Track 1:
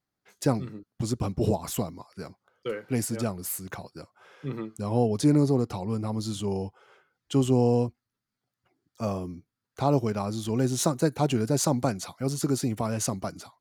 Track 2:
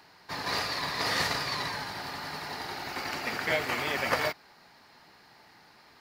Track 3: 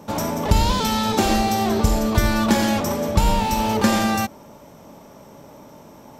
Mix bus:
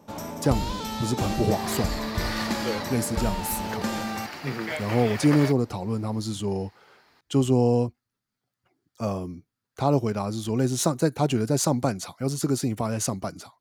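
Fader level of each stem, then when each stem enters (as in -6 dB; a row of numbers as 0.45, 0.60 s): +1.5, -4.0, -11.0 dB; 0.00, 1.20, 0.00 s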